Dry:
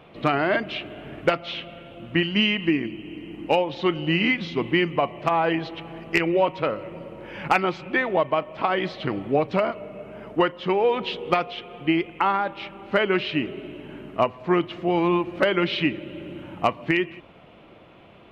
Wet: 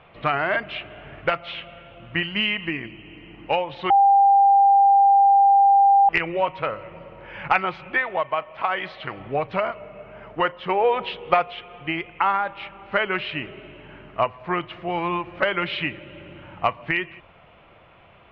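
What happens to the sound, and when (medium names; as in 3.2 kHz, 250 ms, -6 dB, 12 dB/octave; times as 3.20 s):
3.90–6.09 s: bleep 795 Hz -11.5 dBFS
7.98–9.20 s: bass shelf 370 Hz -7 dB
10.44–11.42 s: dynamic bell 600 Hz, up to +6 dB, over -31 dBFS, Q 1
whole clip: low-pass 2.5 kHz 12 dB/octave; peaking EQ 280 Hz -14 dB 1.9 oct; trim +4 dB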